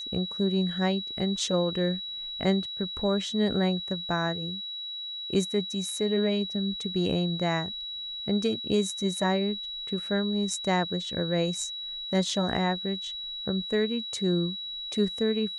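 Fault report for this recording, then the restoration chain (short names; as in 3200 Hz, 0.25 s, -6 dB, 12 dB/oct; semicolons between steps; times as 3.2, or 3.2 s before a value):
tone 3900 Hz -34 dBFS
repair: notch 3900 Hz, Q 30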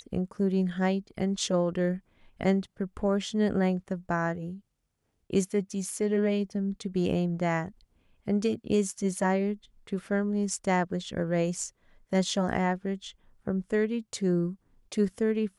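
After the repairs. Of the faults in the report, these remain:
none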